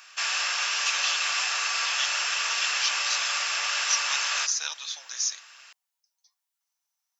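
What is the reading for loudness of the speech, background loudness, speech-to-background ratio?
-30.5 LUFS, -25.5 LUFS, -5.0 dB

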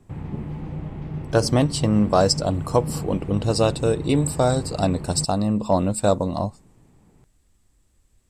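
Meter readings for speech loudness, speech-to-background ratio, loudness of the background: -22.0 LUFS, 10.0 dB, -32.0 LUFS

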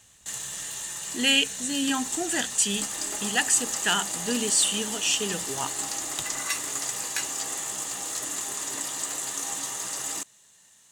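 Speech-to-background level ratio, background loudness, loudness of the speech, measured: 4.0 dB, -29.5 LUFS, -25.5 LUFS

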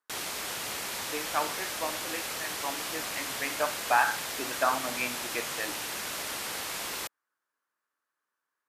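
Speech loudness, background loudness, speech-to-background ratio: -33.0 LUFS, -33.5 LUFS, 0.5 dB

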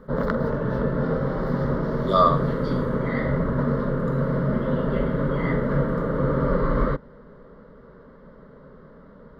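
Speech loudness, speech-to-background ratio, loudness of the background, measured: -22.0 LUFS, 2.5 dB, -24.5 LUFS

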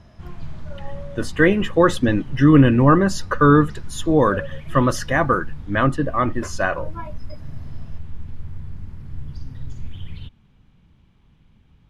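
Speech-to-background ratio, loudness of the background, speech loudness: 20.0 dB, -38.0 LUFS, -18.0 LUFS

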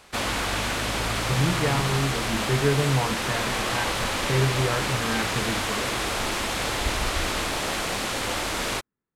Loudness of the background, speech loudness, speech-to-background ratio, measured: -26.0 LUFS, -27.5 LUFS, -1.5 dB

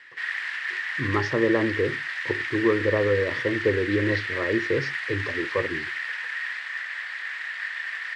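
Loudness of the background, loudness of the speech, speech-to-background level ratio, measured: -29.0 LUFS, -26.5 LUFS, 2.5 dB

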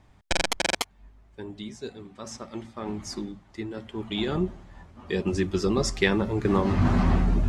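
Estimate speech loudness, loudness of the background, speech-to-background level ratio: -27.5 LUFS, -28.0 LUFS, 0.5 dB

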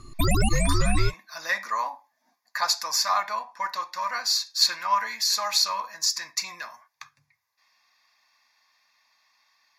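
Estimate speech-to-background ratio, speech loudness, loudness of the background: -1.0 dB, -26.0 LUFS, -25.0 LUFS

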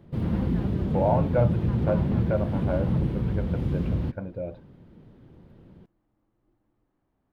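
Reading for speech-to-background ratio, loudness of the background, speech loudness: -3.0 dB, -27.0 LUFS, -30.0 LUFS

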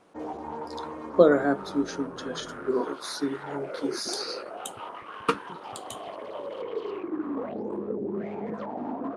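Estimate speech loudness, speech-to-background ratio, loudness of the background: -28.0 LUFS, 8.5 dB, -36.5 LUFS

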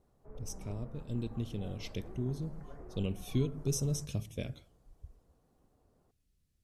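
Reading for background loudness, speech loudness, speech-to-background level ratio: -52.5 LUFS, -38.0 LUFS, 14.5 dB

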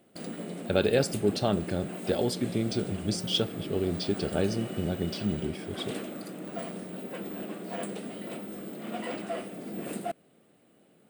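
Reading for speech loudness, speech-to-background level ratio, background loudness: -30.0 LUFS, 8.0 dB, -38.0 LUFS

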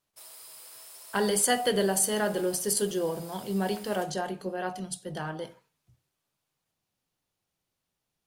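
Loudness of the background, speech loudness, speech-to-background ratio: -46.5 LUFS, -28.5 LUFS, 18.0 dB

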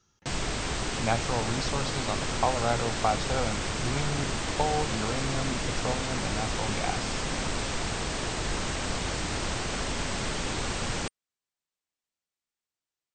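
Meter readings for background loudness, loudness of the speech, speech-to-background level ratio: -31.0 LUFS, -33.0 LUFS, -2.0 dB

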